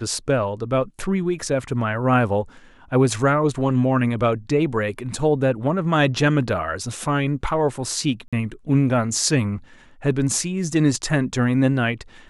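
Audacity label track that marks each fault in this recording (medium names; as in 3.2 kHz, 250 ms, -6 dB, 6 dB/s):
8.280000	8.330000	dropout 46 ms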